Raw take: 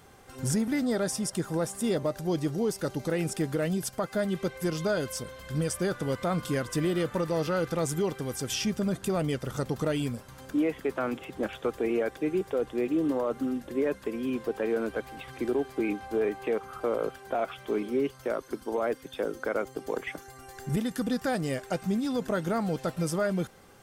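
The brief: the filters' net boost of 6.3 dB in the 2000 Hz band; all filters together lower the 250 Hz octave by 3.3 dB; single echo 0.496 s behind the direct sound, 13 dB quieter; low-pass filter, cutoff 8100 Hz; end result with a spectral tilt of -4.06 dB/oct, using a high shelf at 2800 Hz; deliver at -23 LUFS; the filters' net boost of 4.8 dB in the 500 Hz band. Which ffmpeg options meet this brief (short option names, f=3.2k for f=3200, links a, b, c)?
-af "lowpass=8.1k,equalizer=f=250:t=o:g=-8,equalizer=f=500:t=o:g=7.5,equalizer=f=2k:t=o:g=5,highshelf=f=2.8k:g=7.5,aecho=1:1:496:0.224,volume=4.5dB"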